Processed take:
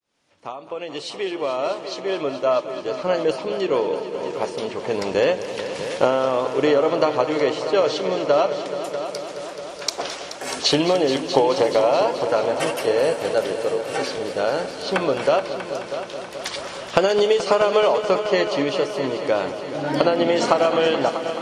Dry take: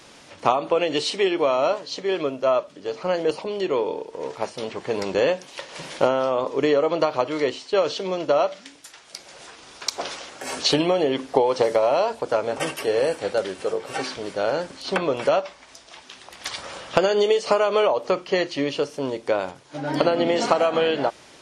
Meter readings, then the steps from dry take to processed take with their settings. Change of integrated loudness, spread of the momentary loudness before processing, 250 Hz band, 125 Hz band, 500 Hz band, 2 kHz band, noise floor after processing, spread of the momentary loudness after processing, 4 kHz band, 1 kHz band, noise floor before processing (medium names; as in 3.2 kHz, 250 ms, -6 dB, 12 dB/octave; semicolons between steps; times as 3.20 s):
+1.5 dB, 13 LU, +2.0 dB, +2.0 dB, +2.0 dB, +2.0 dB, -35 dBFS, 11 LU, +2.0 dB, +1.5 dB, -49 dBFS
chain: fade-in on the opening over 2.83 s; multi-head delay 214 ms, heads all three, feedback 63%, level -14.5 dB; trim +1.5 dB